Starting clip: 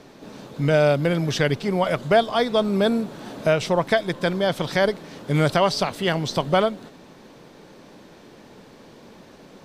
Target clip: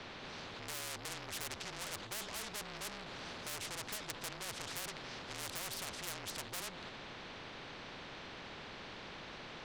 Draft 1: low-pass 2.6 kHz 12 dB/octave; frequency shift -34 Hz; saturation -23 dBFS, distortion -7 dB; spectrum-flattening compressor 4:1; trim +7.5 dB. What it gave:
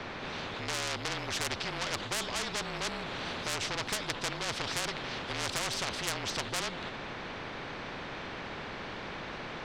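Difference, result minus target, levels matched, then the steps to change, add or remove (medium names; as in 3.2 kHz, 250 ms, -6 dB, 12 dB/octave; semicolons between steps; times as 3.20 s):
saturation: distortion -4 dB
change: saturation -31.5 dBFS, distortion -3 dB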